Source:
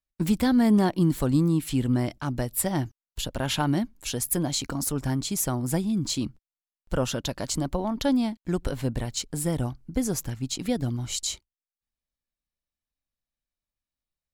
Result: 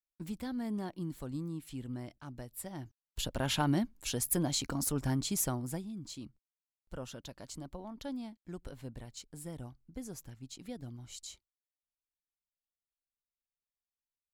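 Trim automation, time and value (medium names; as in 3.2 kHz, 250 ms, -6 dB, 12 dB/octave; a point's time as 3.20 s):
2.78 s -17 dB
3.19 s -5 dB
5.43 s -5 dB
5.93 s -17 dB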